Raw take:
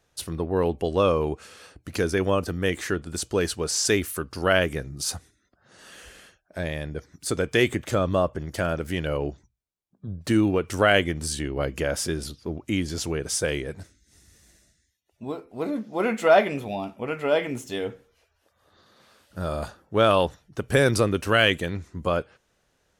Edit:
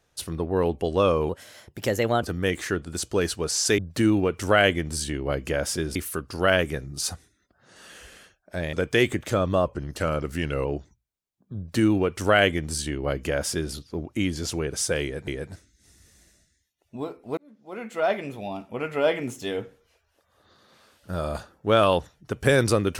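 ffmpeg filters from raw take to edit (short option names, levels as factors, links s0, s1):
-filter_complex "[0:a]asplit=10[s0][s1][s2][s3][s4][s5][s6][s7][s8][s9];[s0]atrim=end=1.294[s10];[s1]atrim=start=1.29:end=2.42,asetpts=PTS-STARTPTS,asetrate=53361,aresample=44100,atrim=end_sample=41184,asetpts=PTS-STARTPTS[s11];[s2]atrim=start=2.416:end=3.982[s12];[s3]atrim=start=10.088:end=12.262[s13];[s4]atrim=start=3.978:end=6.762[s14];[s5]atrim=start=7.338:end=8.264[s15];[s6]atrim=start=8.26:end=9.18,asetpts=PTS-STARTPTS,asetrate=40572,aresample=44100[s16];[s7]atrim=start=9.176:end=13.802[s17];[s8]atrim=start=13.548:end=15.65,asetpts=PTS-STARTPTS,afade=t=out:st=2.098:d=0.004:c=hsin[s18];[s9]atrim=start=15.65,asetpts=PTS-STARTPTS,afade=t=in:d=1.54[s19];[s10][s11]acrossfade=d=0.004:c1=hsin:c2=hsin[s20];[s20][s12]acrossfade=d=0.004:c1=hsin:c2=hsin[s21];[s21][s13]acrossfade=d=0.004:c1=hsin:c2=hsin[s22];[s22][s14]acrossfade=d=0.004:c1=hsin:c2=hsin[s23];[s23][s15]acrossfade=d=0.004:c1=hsin:c2=hsin[s24];[s24][s16]acrossfade=d=0.004:c1=hsin:c2=hsin[s25];[s25][s17]acrossfade=d=0.004:c1=hsin:c2=hsin[s26];[s18][s19]concat=n=2:v=0:a=1[s27];[s26][s27]acrossfade=d=0.004:c1=hsin:c2=hsin"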